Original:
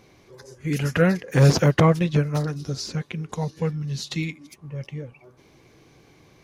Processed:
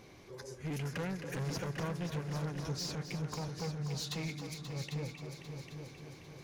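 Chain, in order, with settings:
downward compressor 3 to 1, threshold −30 dBFS, peak gain reduction 14 dB
soft clipping −33 dBFS, distortion −8 dB
echo machine with several playback heads 266 ms, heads all three, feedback 53%, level −11.5 dB
level −1.5 dB

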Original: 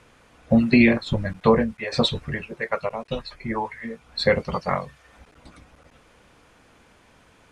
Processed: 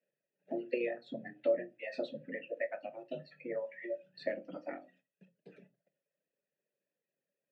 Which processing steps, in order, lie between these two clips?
reverb reduction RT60 1.2 s
noise gate −51 dBFS, range −27 dB
frequency shifter +120 Hz
bass and treble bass +9 dB, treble +1 dB
downward compressor 2.5 to 1, threshold −31 dBFS, peak gain reduction 14 dB
formant filter e
spectral tilt −1.5 dB per octave
on a send: convolution reverb RT60 0.25 s, pre-delay 5 ms, DRR 9 dB
on the sum: level +3 dB

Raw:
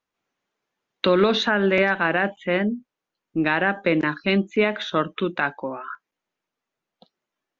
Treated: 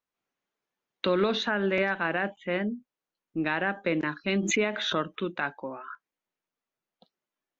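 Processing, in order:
0:04.35–0:05.18: background raised ahead of every attack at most 41 dB per second
level −7 dB

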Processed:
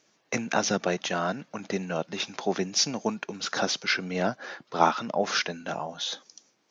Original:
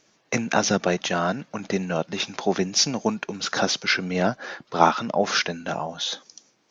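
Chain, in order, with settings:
high-pass filter 130 Hz 6 dB per octave
level −4 dB

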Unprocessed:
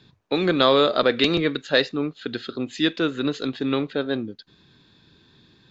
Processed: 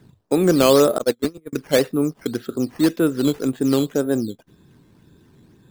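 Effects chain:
0:00.98–0:01.53: noise gate −16 dBFS, range −40 dB
tilt shelving filter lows +8.5 dB, about 1,400 Hz
sample-and-hold swept by an LFO 8×, swing 100% 1.9 Hz
level −2 dB

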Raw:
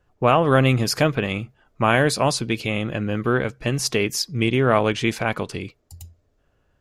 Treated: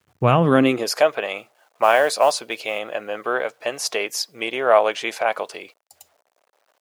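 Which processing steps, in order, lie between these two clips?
bit reduction 10 bits
high-pass filter sweep 96 Hz → 630 Hz, 0:00.25–0:00.95
0:01.37–0:02.79: noise that follows the level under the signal 29 dB
level −1 dB

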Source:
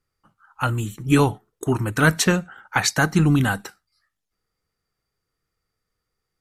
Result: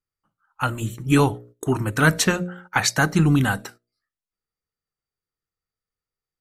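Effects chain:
hum removal 59.55 Hz, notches 11
noise gate −44 dBFS, range −13 dB

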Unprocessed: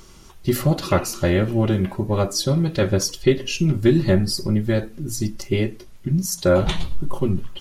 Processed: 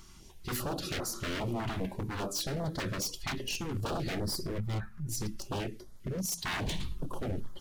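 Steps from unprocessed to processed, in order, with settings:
0:04.58–0:05.09: drawn EQ curve 190 Hz 0 dB, 280 Hz −24 dB, 1,300 Hz +10 dB, 3,000 Hz −10 dB
wave folding −20.5 dBFS
notch on a step sequencer 5 Hz 500–2,600 Hz
level −7 dB

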